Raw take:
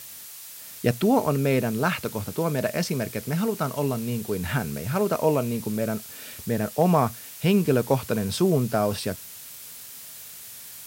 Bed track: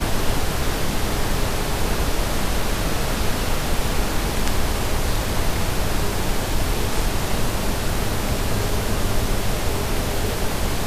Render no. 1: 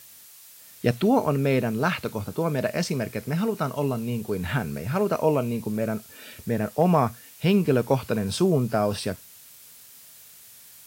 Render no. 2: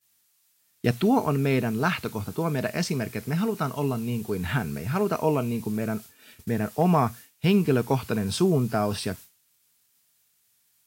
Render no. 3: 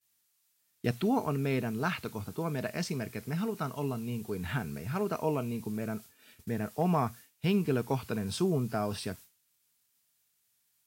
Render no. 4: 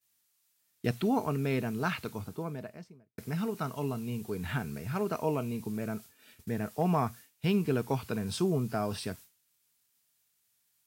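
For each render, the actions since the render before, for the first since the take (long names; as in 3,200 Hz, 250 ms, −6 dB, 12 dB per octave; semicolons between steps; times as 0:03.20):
noise reduction from a noise print 7 dB
downward expander −36 dBFS; parametric band 550 Hz −10 dB 0.26 octaves
level −7 dB
0:02.02–0:03.18: fade out and dull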